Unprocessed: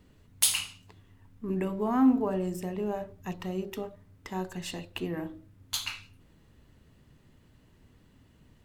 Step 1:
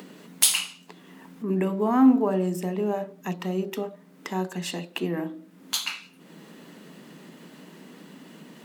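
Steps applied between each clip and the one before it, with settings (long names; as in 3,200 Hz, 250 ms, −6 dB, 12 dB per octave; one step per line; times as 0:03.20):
elliptic high-pass filter 170 Hz
in parallel at +1.5 dB: upward compression, threshold −33 dBFS
on the sum: level −1 dB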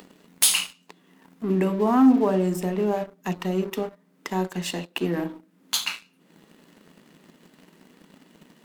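leveller curve on the samples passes 2
level −5 dB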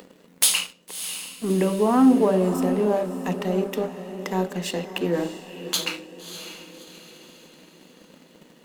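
parametric band 510 Hz +9 dB 0.32 octaves
feedback delay with all-pass diffusion 618 ms, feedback 43%, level −10.5 dB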